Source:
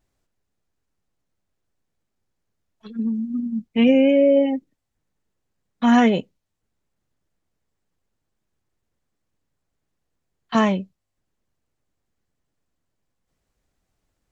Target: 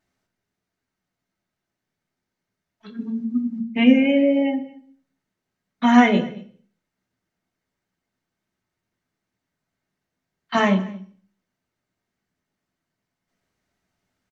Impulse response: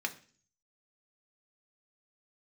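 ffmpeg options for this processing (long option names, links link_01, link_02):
-filter_complex "[0:a]aecho=1:1:227:0.0708[link_01];[1:a]atrim=start_sample=2205,afade=type=out:start_time=0.44:duration=0.01,atrim=end_sample=19845,asetrate=37485,aresample=44100[link_02];[link_01][link_02]afir=irnorm=-1:irlink=0,volume=-1.5dB"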